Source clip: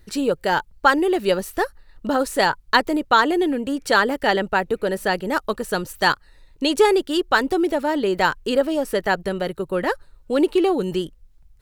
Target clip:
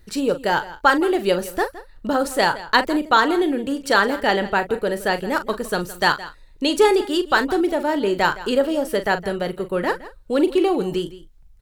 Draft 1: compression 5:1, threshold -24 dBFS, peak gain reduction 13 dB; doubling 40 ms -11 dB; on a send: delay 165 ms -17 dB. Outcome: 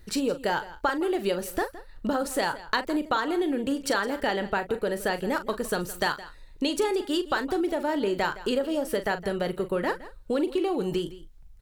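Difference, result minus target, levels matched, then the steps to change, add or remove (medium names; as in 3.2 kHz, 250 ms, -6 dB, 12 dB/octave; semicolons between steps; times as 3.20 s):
compression: peak gain reduction +13 dB
remove: compression 5:1, threshold -24 dBFS, peak gain reduction 13 dB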